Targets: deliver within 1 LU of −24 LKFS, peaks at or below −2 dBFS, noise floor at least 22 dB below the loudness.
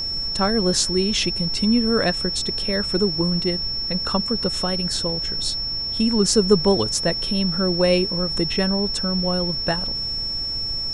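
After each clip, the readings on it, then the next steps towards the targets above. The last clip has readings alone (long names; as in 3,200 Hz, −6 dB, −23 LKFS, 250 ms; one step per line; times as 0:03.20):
interfering tone 5,400 Hz; level of the tone −24 dBFS; background noise floor −27 dBFS; target noise floor −43 dBFS; integrated loudness −20.5 LKFS; sample peak −3.5 dBFS; target loudness −24.0 LKFS
→ notch filter 5,400 Hz, Q 30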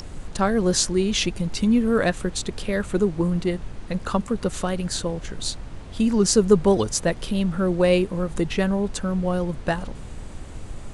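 interfering tone none found; background noise floor −37 dBFS; target noise floor −45 dBFS
→ noise reduction from a noise print 8 dB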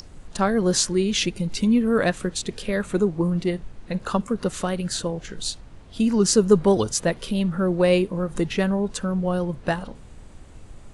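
background noise floor −45 dBFS; integrated loudness −23.0 LKFS; sample peak −4.5 dBFS; target loudness −24.0 LKFS
→ level −1 dB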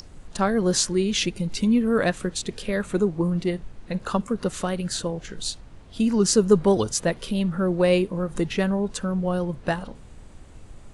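integrated loudness −24.0 LKFS; sample peak −5.5 dBFS; background noise floor −46 dBFS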